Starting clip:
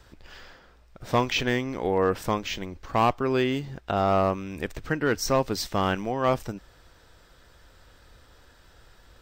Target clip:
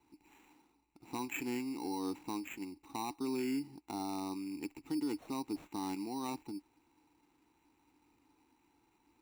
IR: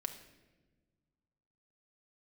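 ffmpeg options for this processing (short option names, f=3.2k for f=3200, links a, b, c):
-filter_complex "[0:a]asplit=3[a][b][c];[a]bandpass=f=300:t=q:w=8,volume=0dB[d];[b]bandpass=f=870:t=q:w=8,volume=-6dB[e];[c]bandpass=f=2.24k:t=q:w=8,volume=-9dB[f];[d][e][f]amix=inputs=3:normalize=0,acrusher=samples=9:mix=1:aa=0.000001,alimiter=level_in=6.5dB:limit=-24dB:level=0:latency=1:release=36,volume=-6.5dB,volume=1dB"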